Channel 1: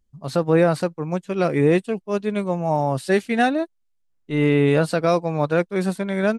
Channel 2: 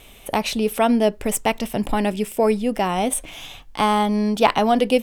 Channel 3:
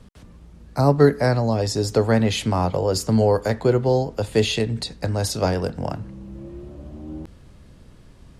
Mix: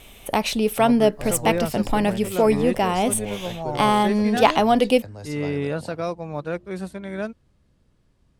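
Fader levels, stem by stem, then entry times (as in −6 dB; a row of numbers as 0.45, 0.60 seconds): −8.5, 0.0, −15.5 decibels; 0.95, 0.00, 0.00 seconds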